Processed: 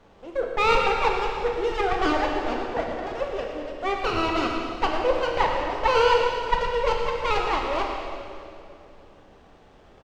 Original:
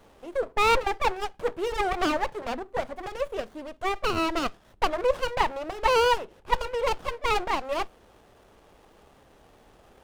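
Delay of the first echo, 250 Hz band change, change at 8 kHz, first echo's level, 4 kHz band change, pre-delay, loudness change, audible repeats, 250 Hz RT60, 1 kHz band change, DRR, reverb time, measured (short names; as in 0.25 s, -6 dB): 0.115 s, +3.5 dB, -3.0 dB, -11.0 dB, +2.0 dB, 10 ms, +3.0 dB, 1, 3.2 s, +3.0 dB, 0.0 dB, 2.5 s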